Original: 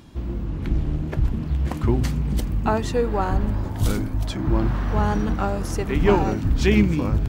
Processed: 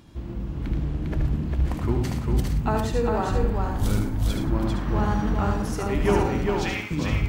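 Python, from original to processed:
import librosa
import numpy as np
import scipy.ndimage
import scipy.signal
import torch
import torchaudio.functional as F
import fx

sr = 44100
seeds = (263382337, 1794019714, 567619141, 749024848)

p1 = fx.highpass(x, sr, hz=760.0, slope=24, at=(6.4, 6.91))
p2 = p1 + fx.echo_multitap(p1, sr, ms=(76, 112, 178, 401, 469, 516), db=(-5.0, -11.5, -18.5, -3.5, -9.5, -19.0), dry=0)
y = p2 * 10.0 ** (-4.5 / 20.0)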